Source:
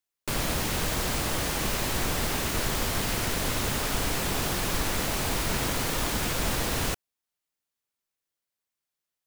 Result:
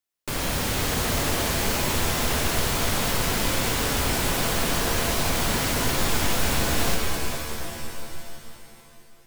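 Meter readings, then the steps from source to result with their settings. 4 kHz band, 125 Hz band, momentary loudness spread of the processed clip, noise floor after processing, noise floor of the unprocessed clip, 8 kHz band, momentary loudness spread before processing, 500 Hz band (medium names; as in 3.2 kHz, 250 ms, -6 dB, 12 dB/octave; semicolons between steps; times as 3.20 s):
+4.5 dB, +4.0 dB, 9 LU, -50 dBFS, under -85 dBFS, +4.0 dB, 0 LU, +4.5 dB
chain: pitch-shifted reverb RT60 2.8 s, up +7 st, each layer -2 dB, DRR 1.5 dB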